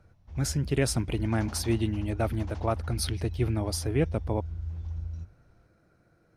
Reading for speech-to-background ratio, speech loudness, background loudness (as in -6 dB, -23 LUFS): 8.0 dB, -30.0 LUFS, -38.0 LUFS